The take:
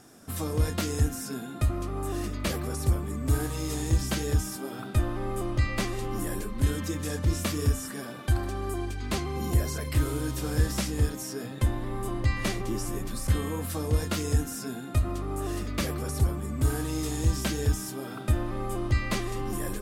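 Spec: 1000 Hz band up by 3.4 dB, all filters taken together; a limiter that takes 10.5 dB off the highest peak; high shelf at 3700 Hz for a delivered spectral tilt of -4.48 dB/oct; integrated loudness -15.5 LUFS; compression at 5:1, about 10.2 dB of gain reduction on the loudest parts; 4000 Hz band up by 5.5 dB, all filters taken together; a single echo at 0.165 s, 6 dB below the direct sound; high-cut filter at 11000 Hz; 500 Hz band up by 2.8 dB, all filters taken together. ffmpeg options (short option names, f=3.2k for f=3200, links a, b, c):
-af "lowpass=11k,equalizer=f=500:t=o:g=3,equalizer=f=1k:t=o:g=3,highshelf=f=3.7k:g=3.5,equalizer=f=4k:t=o:g=4.5,acompressor=threshold=-30dB:ratio=5,alimiter=level_in=3.5dB:limit=-24dB:level=0:latency=1,volume=-3.5dB,aecho=1:1:165:0.501,volume=20.5dB"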